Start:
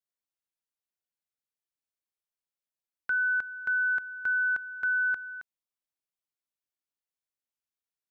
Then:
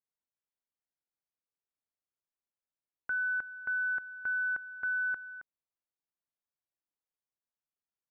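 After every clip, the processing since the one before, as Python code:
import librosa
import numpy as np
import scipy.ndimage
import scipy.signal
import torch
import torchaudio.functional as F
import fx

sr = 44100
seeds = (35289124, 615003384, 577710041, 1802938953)

y = scipy.signal.sosfilt(scipy.signal.butter(2, 1500.0, 'lowpass', fs=sr, output='sos'), x)
y = y * librosa.db_to_amplitude(-2.0)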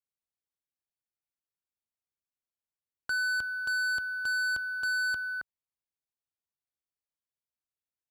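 y = fx.peak_eq(x, sr, hz=68.0, db=9.0, octaves=2.2)
y = fx.leveller(y, sr, passes=3)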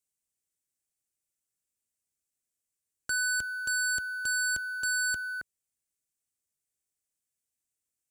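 y = fx.graphic_eq_10(x, sr, hz=(1000, 4000, 8000), db=(-12, -6, 11))
y = y * librosa.db_to_amplitude(4.5)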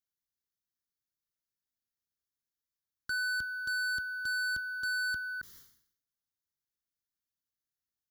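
y = fx.fixed_phaser(x, sr, hz=2500.0, stages=6)
y = fx.sustainer(y, sr, db_per_s=89.0)
y = y * librosa.db_to_amplitude(-2.5)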